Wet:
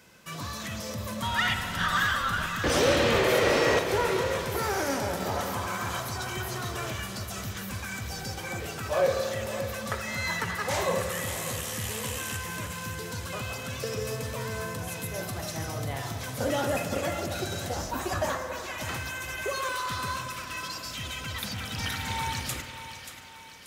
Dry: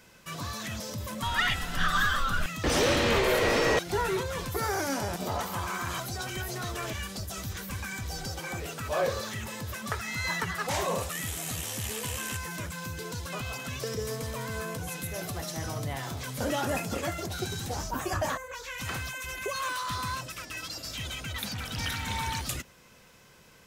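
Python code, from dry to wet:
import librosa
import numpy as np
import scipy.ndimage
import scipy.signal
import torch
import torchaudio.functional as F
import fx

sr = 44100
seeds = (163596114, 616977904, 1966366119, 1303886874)

y = scipy.signal.sosfilt(scipy.signal.butter(2, 57.0, 'highpass', fs=sr, output='sos'), x)
y = fx.echo_thinned(y, sr, ms=583, feedback_pct=54, hz=420.0, wet_db=-10.5)
y = fx.rev_spring(y, sr, rt60_s=3.3, pass_ms=(56,), chirp_ms=60, drr_db=6.5)
y = fx.dynamic_eq(y, sr, hz=540.0, q=5.8, threshold_db=-45.0, ratio=4.0, max_db=5)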